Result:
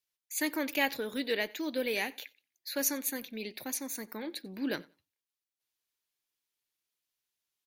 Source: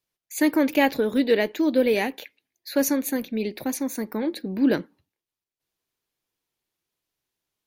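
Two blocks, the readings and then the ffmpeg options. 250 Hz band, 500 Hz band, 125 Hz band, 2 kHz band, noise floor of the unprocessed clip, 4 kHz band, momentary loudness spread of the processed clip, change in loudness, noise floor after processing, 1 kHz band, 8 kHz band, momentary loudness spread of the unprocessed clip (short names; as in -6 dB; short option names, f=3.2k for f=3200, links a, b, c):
-14.0 dB, -12.5 dB, -14.5 dB, -5.0 dB, under -85 dBFS, -3.0 dB, 10 LU, -10.0 dB, under -85 dBFS, -10.0 dB, -2.5 dB, 8 LU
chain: -af "tiltshelf=f=1.1k:g=-6.5,aecho=1:1:91|182:0.0631|0.0114,volume=-8.5dB"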